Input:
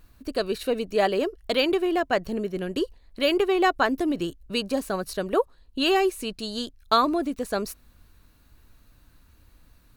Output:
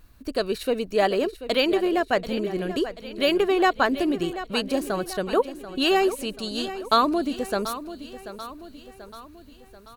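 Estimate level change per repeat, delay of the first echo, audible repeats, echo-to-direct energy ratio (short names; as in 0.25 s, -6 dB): -5.5 dB, 0.736 s, 4, -11.5 dB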